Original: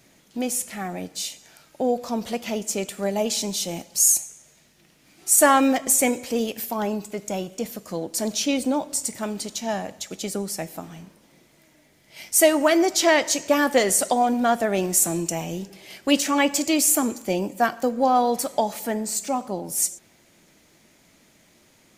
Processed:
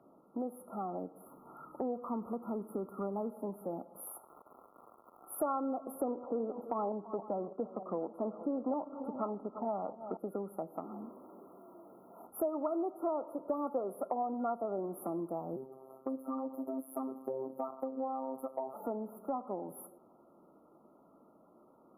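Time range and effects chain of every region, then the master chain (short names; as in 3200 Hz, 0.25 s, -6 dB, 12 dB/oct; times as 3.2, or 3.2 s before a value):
1.26–3.31 G.711 law mismatch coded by mu + comb 0.8 ms, depth 55%
4.05–5.38 HPF 740 Hz + crackle 260/s -32 dBFS
6.01–10.17 sample leveller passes 1 + tapped delay 0.338/0.469 s -20/-19.5 dB + LFO low-pass saw down 3.3 Hz 720–5800 Hz
10.84–12.27 zero-crossing step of -49.5 dBFS + high shelf 10000 Hz +5.5 dB + frequency shift +43 Hz
15.56–18.74 robotiser 132 Hz + compressor 2:1, threshold -25 dBFS + high shelf 10000 Hz +5 dB
whole clip: FFT band-reject 1400–10000 Hz; three-band isolator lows -19 dB, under 210 Hz, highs -22 dB, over 2900 Hz; compressor 3:1, threshold -37 dBFS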